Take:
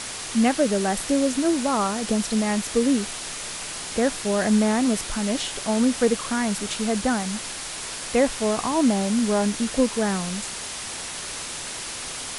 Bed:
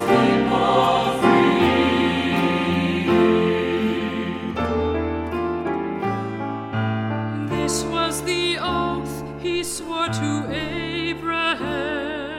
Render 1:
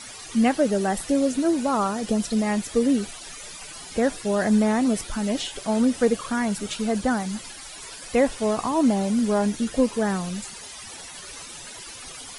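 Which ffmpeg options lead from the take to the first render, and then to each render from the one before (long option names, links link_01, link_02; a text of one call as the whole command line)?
ffmpeg -i in.wav -af "afftdn=noise_reduction=14:noise_floor=-34" out.wav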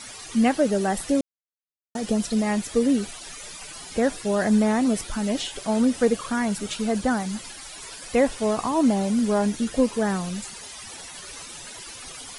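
ffmpeg -i in.wav -filter_complex "[0:a]asplit=3[link_01][link_02][link_03];[link_01]atrim=end=1.21,asetpts=PTS-STARTPTS,afade=type=out:start_time=1.206:duration=0.004:curve=hsin[link_04];[link_02]atrim=start=1.21:end=1.95,asetpts=PTS-STARTPTS,volume=0[link_05];[link_03]atrim=start=1.95,asetpts=PTS-STARTPTS,afade=type=in:duration=0.004:curve=hsin[link_06];[link_04][link_05][link_06]concat=n=3:v=0:a=1" out.wav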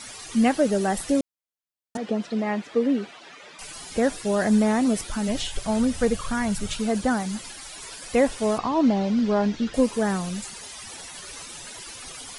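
ffmpeg -i in.wav -filter_complex "[0:a]asettb=1/sr,asplit=3[link_01][link_02][link_03];[link_01]atrim=end=1.974[link_04];[link_02]atrim=start=1.97:end=3.59,asetpts=PTS-STARTPTS,afade=type=in:duration=0.004:curve=qsin,afade=type=out:start_time=1.616:duration=0.004:curve=qsin,highpass=230,lowpass=2800[link_05];[link_03]atrim=start=3.586[link_06];[link_04][link_05]acrossfade=duration=0.004:curve1=hsin:curve2=qsin[link_07];[link_07][link_06]acrossfade=duration=0.004:curve1=qsin:curve2=hsin,asplit=3[link_08][link_09][link_10];[link_08]afade=type=out:start_time=5.27:duration=0.02[link_11];[link_09]asubboost=boost=6.5:cutoff=110,afade=type=in:start_time=5.27:duration=0.02,afade=type=out:start_time=6.78:duration=0.02[link_12];[link_10]afade=type=in:start_time=6.78:duration=0.02[link_13];[link_11][link_12][link_13]amix=inputs=3:normalize=0,asettb=1/sr,asplit=3[link_14][link_15][link_16];[link_14]atrim=end=8.584[link_17];[link_15]atrim=start=8.58:end=9.74,asetpts=PTS-STARTPTS,afade=type=in:duration=0.004:curve=qsin,afade=type=out:start_time=1.156:duration=0.004:curve=qsin,lowpass=frequency=5100:width=0.5412,lowpass=frequency=5100:width=1.3066[link_18];[link_16]atrim=start=9.736[link_19];[link_17][link_18]acrossfade=duration=0.004:curve1=hsin:curve2=qsin[link_20];[link_20][link_19]acrossfade=duration=0.004:curve1=qsin:curve2=hsin" out.wav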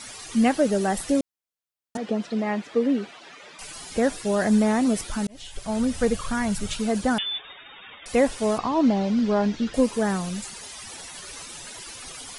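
ffmpeg -i in.wav -filter_complex "[0:a]asettb=1/sr,asplit=3[link_01][link_02][link_03];[link_01]atrim=end=7.184[link_04];[link_02]atrim=start=7.18:end=8.06,asetpts=PTS-STARTPTS,afade=type=in:duration=0.004:curve=qsin,afade=type=out:start_time=0.876:duration=0.004:curve=qsin,lowpass=frequency=3100:width_type=q:width=0.5098,lowpass=frequency=3100:width_type=q:width=0.6013,lowpass=frequency=3100:width_type=q:width=0.9,lowpass=frequency=3100:width_type=q:width=2.563,afreqshift=-3700[link_05];[link_03]atrim=start=8.056[link_06];[link_04][link_05]acrossfade=duration=0.004:curve1=hsin:curve2=qsin[link_07];[link_07][link_06]acrossfade=duration=0.004:curve1=qsin:curve2=hsin,asplit=2[link_08][link_09];[link_08]atrim=end=5.27,asetpts=PTS-STARTPTS,afade=type=out:start_time=5.266:duration=0.004:curve=hsin[link_10];[link_09]atrim=start=5.27,asetpts=PTS-STARTPTS,afade=type=in:duration=0.9:curve=qsin[link_11];[link_10][link_11]concat=n=2:v=0:a=1" out.wav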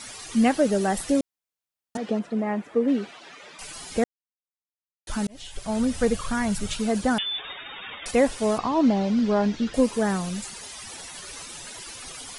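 ffmpeg -i in.wav -filter_complex "[0:a]asettb=1/sr,asplit=3[link_01][link_02][link_03];[link_01]atrim=end=2.194[link_04];[link_02]atrim=start=2.19:end=2.88,asetpts=PTS-STARTPTS,afade=type=in:duration=0.004:curve=qsin,afade=type=out:start_time=0.686:duration=0.004:curve=qsin,equalizer=frequency=4500:width=0.73:gain=-12[link_05];[link_03]atrim=start=2.876[link_06];[link_04][link_05]acrossfade=duration=0.004:curve1=hsin:curve2=qsin[link_07];[link_07][link_06]acrossfade=duration=0.004:curve1=qsin:curve2=hsin,asettb=1/sr,asplit=3[link_08][link_09][link_10];[link_08]atrim=end=7.384[link_11];[link_09]atrim=start=7.38:end=8.11,asetpts=PTS-STARTPTS,afade=type=in:duration=0.004:curve=qsin,afade=type=out:start_time=0.726:duration=0.004:curve=qsin,acontrast=55[link_12];[link_10]atrim=start=8.106[link_13];[link_11][link_12]acrossfade=duration=0.004:curve1=hsin:curve2=qsin[link_14];[link_14][link_13]acrossfade=duration=0.004:curve1=qsin:curve2=hsin,asplit=3[link_15][link_16][link_17];[link_15]atrim=end=4.04,asetpts=PTS-STARTPTS,afade=type=out:start_time=4.036:duration=0.004:curve=hsin[link_18];[link_16]atrim=start=4.04:end=5.07,asetpts=PTS-STARTPTS,volume=0[link_19];[link_17]atrim=start=5.07,asetpts=PTS-STARTPTS,afade=type=in:duration=0.004:curve=hsin[link_20];[link_18][link_19][link_20]concat=n=3:v=0:a=1" out.wav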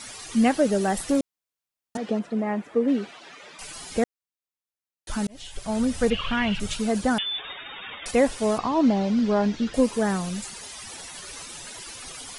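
ffmpeg -i in.wav -filter_complex "[0:a]asettb=1/sr,asplit=3[link_01][link_02][link_03];[link_01]atrim=end=0.794[link_04];[link_02]atrim=start=0.79:end=1.19,asetpts=PTS-STARTPTS,afade=type=in:duration=0.004:curve=qsin,afade=type=out:start_time=0.396:duration=0.004:curve=qsin,aeval=exprs='clip(val(0),-1,0.119)':channel_layout=same[link_05];[link_03]atrim=start=1.186[link_06];[link_04][link_05]acrossfade=duration=0.004:curve1=hsin:curve2=qsin[link_07];[link_07][link_06]acrossfade=duration=0.004:curve1=qsin:curve2=hsin,asettb=1/sr,asplit=3[link_08][link_09][link_10];[link_08]atrim=end=6.104[link_11];[link_09]atrim=start=6.1:end=6.6,asetpts=PTS-STARTPTS,afade=type=in:duration=0.004:curve=qsin,afade=type=out:start_time=0.496:duration=0.004:curve=qsin,lowpass=frequency=2900:width_type=q:width=7.6[link_12];[link_10]atrim=start=6.596[link_13];[link_11][link_12]acrossfade=duration=0.004:curve1=hsin:curve2=qsin[link_14];[link_14][link_13]acrossfade=duration=0.004:curve1=qsin:curve2=hsin" out.wav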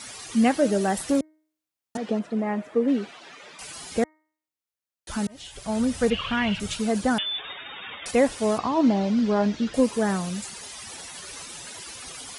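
ffmpeg -i in.wav -af "highpass=48,bandreject=frequency=310.8:width_type=h:width=4,bandreject=frequency=621.6:width_type=h:width=4,bandreject=frequency=932.4:width_type=h:width=4,bandreject=frequency=1243.2:width_type=h:width=4,bandreject=frequency=1554:width_type=h:width=4,bandreject=frequency=1864.8:width_type=h:width=4,bandreject=frequency=2175.6:width_type=h:width=4" out.wav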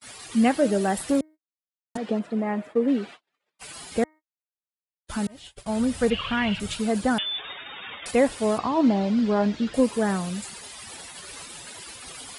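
ffmpeg -i in.wav -af "agate=range=-41dB:threshold=-40dB:ratio=16:detection=peak,equalizer=frequency=6000:width_type=o:width=0.35:gain=-5.5" out.wav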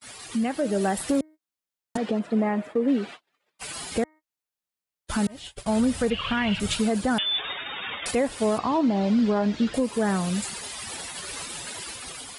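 ffmpeg -i in.wav -af "alimiter=limit=-20dB:level=0:latency=1:release=285,dynaudnorm=framelen=160:gausssize=7:maxgain=5dB" out.wav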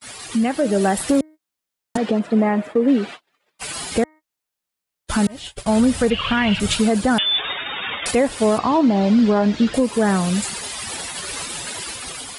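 ffmpeg -i in.wav -af "volume=6.5dB" out.wav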